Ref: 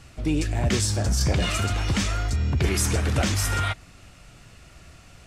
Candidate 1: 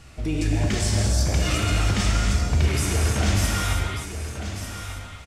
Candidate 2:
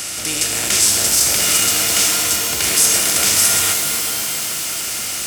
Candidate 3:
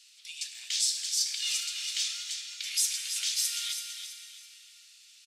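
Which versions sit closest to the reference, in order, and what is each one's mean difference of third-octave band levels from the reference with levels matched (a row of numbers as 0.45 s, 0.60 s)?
1, 2, 3; 6.5 dB, 12.0 dB, 19.5 dB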